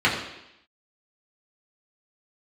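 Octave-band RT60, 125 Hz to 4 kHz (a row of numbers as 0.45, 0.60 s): 0.70, 0.85, 0.80, 0.85, 0.90, 0.90 s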